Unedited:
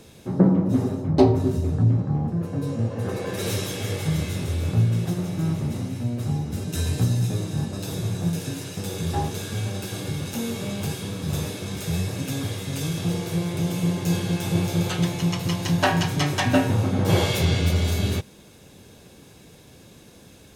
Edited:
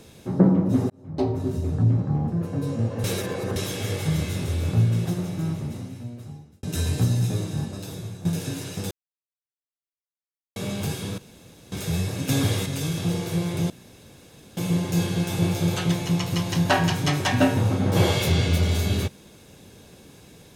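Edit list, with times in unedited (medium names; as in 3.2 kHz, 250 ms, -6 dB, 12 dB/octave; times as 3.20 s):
0.90–2.22 s: fade in equal-power
3.04–3.56 s: reverse
5.04–6.63 s: fade out
7.38–8.25 s: fade out, to -12.5 dB
8.91–10.56 s: mute
11.18–11.72 s: room tone
12.29–12.66 s: gain +6 dB
13.70 s: insert room tone 0.87 s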